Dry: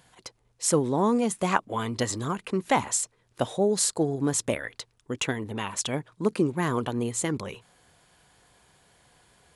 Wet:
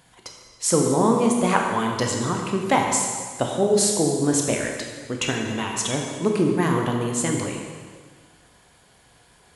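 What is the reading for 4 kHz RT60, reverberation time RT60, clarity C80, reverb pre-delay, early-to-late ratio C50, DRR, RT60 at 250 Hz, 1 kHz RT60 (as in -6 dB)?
1.6 s, 1.7 s, 4.0 dB, 7 ms, 2.5 dB, 1.0 dB, 1.8 s, 1.6 s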